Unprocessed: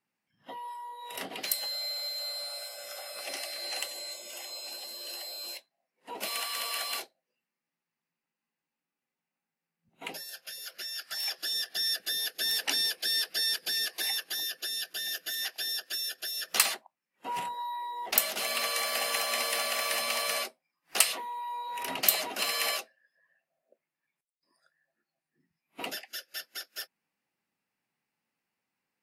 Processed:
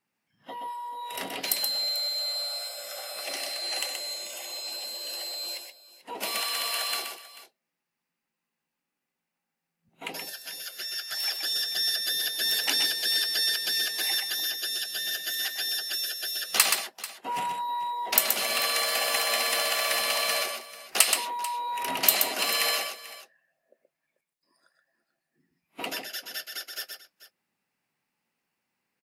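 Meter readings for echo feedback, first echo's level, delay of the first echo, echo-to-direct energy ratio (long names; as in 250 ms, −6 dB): repeats not evenly spaced, −5.5 dB, 126 ms, −5.0 dB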